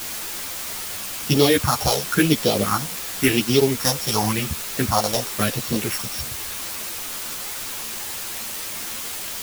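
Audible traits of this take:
a buzz of ramps at a fixed pitch in blocks of 8 samples
phaser sweep stages 4, 0.93 Hz, lowest notch 270–1,700 Hz
a quantiser's noise floor 6 bits, dither triangular
a shimmering, thickened sound

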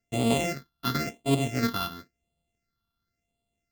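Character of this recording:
a buzz of ramps at a fixed pitch in blocks of 64 samples
phaser sweep stages 6, 0.95 Hz, lowest notch 570–1,600 Hz

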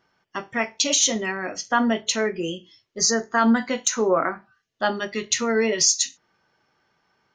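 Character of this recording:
background noise floor −74 dBFS
spectral slope −1.5 dB per octave

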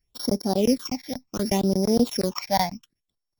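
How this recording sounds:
a buzz of ramps at a fixed pitch in blocks of 8 samples
phaser sweep stages 8, 0.68 Hz, lowest notch 360–2,800 Hz

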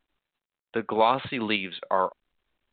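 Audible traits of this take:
tremolo saw up 3.2 Hz, depth 35%
mu-law

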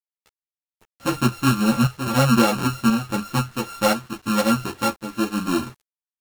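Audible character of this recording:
a buzz of ramps at a fixed pitch in blocks of 32 samples
chopped level 0.97 Hz, depth 60%, duty 80%
a quantiser's noise floor 8 bits, dither none
a shimmering, thickened sound

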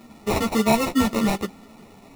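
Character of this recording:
aliases and images of a low sample rate 1,600 Hz, jitter 0%
a shimmering, thickened sound

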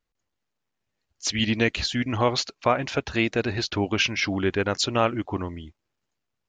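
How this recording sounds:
background noise floor −81 dBFS
spectral slope −4.0 dB per octave

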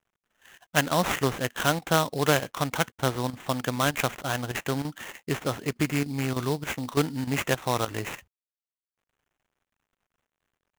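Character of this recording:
a quantiser's noise floor 12 bits, dither none
chopped level 3.3 Hz, depth 65%, duty 90%
aliases and images of a low sample rate 4,700 Hz, jitter 20%

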